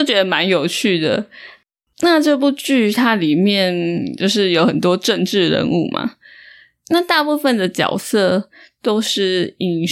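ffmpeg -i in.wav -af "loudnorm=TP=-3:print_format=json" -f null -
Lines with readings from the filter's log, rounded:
"input_i" : "-16.4",
"input_tp" : "-1.9",
"input_lra" : "2.5",
"input_thresh" : "-26.9",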